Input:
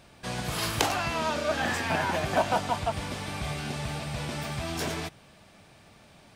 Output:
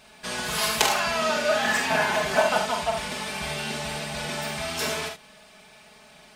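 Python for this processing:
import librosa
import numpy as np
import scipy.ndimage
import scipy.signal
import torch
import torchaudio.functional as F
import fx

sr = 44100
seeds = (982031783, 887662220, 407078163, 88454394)

p1 = fx.low_shelf(x, sr, hz=420.0, db=-10.5)
p2 = p1 + 0.85 * np.pad(p1, (int(4.7 * sr / 1000.0), 0))[:len(p1)]
p3 = p2 + fx.room_early_taps(p2, sr, ms=(46, 73), db=(-6.5, -8.5), dry=0)
y = p3 * librosa.db_to_amplitude(3.0)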